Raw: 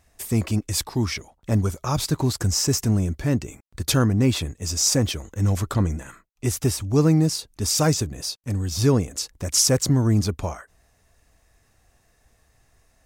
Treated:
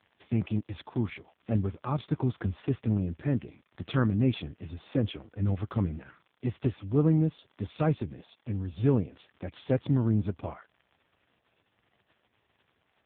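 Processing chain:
surface crackle 140 per second −37 dBFS
level −5.5 dB
AMR narrowband 5.15 kbit/s 8,000 Hz

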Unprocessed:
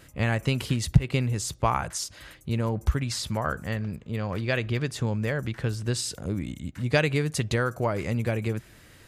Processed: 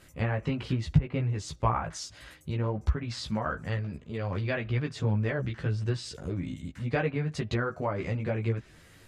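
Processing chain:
treble cut that deepens with the level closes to 1,700 Hz, closed at −20.5 dBFS
multi-voice chorus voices 4, 0.71 Hz, delay 15 ms, depth 4.3 ms

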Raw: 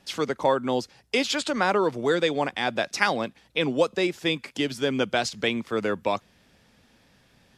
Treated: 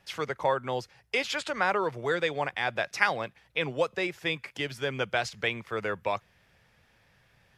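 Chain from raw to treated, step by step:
graphic EQ with 10 bands 125 Hz +4 dB, 250 Hz −12 dB, 2,000 Hz +4 dB, 4,000 Hz −4 dB, 8,000 Hz −5 dB
level −3 dB

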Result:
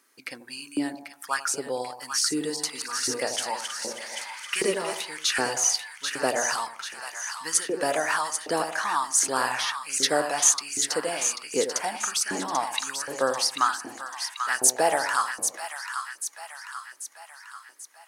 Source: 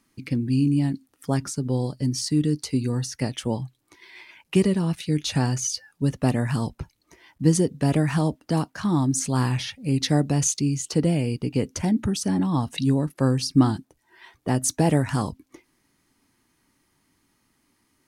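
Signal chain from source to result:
0:02.25–0:04.97: feedback delay that plays each chunk backwards 159 ms, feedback 61%, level −6 dB
high-shelf EQ 3,900 Hz +11.5 dB
echo with a time of its own for lows and highs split 930 Hz, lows 87 ms, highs 789 ms, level −7 dB
auto-filter high-pass saw up 1.3 Hz 400–1,600 Hz
parametric band 1,500 Hz +9.5 dB 0.93 octaves
level −4 dB

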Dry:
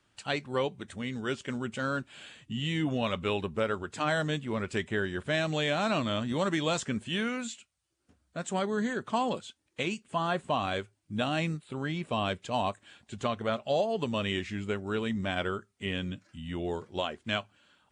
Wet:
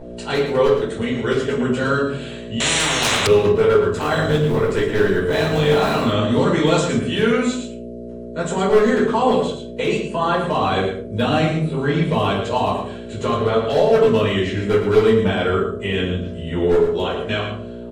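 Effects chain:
0:03.92–0:06.00: sub-harmonics by changed cycles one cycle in 3, muted
parametric band 1,000 Hz +3 dB 0.91 octaves
brickwall limiter −21 dBFS, peak gain reduction 5.5 dB
hollow resonant body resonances 430/4,000 Hz, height 11 dB, ringing for 45 ms
hum with harmonics 60 Hz, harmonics 11, −45 dBFS 0 dB per octave
wave folding −19.5 dBFS
single-tap delay 112 ms −8 dB
rectangular room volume 320 cubic metres, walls furnished, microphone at 4.7 metres
0:02.60–0:03.27: every bin compressed towards the loudest bin 10 to 1
level +2 dB

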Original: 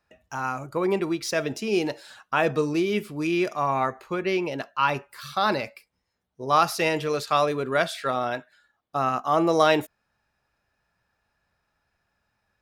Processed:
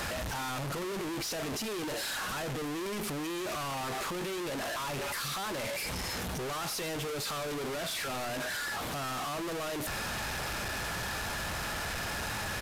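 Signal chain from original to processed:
sign of each sample alone
downsampling to 32,000 Hz
level −8.5 dB

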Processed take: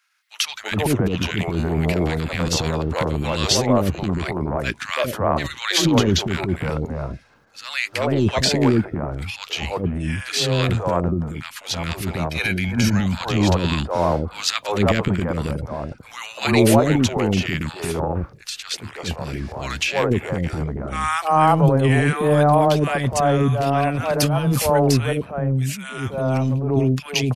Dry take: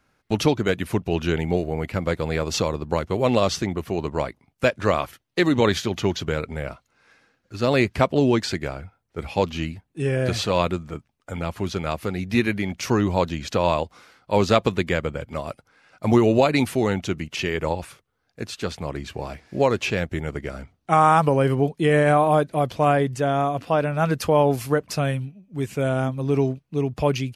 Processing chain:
0:12.27–0:12.96: comb filter 1.3 ms, depth 80%
transient designer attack −11 dB, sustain +8 dB
three-band delay without the direct sound highs, mids, lows 330/410 ms, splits 430/1,300 Hz
level +4.5 dB

